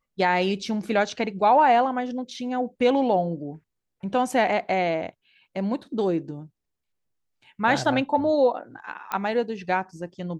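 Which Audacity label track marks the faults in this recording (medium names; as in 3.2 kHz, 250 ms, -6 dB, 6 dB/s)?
9.120000	9.120000	pop -14 dBFS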